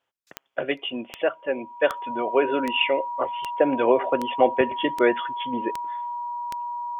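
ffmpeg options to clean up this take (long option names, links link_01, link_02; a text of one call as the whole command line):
ffmpeg -i in.wav -af "adeclick=threshold=4,bandreject=frequency=960:width=30" out.wav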